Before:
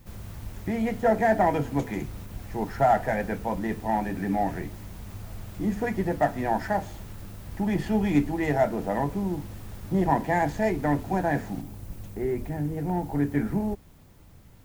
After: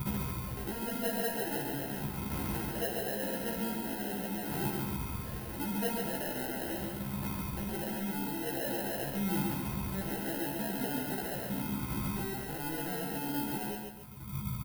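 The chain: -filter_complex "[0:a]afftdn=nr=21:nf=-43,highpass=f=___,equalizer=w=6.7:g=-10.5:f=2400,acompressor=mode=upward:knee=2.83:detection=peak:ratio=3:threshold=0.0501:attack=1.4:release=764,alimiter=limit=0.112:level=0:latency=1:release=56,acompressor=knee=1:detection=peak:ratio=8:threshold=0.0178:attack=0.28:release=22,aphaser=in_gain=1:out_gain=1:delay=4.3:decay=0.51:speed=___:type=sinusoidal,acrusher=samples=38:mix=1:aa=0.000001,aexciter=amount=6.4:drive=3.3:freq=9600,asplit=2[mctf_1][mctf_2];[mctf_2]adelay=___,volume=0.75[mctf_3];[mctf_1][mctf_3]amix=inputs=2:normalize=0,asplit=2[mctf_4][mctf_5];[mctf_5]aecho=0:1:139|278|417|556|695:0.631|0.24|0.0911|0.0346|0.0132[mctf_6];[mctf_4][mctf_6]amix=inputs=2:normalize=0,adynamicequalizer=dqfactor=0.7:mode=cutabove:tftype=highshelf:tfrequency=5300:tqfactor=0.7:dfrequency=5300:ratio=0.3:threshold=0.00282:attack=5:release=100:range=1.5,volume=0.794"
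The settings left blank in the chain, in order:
140, 0.42, 15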